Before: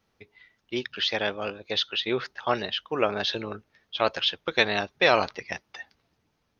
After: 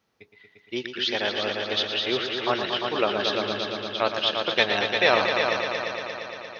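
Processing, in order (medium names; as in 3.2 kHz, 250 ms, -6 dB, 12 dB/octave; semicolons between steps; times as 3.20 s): high-pass 140 Hz 6 dB/octave; on a send: multi-head delay 116 ms, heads all three, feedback 67%, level -9 dB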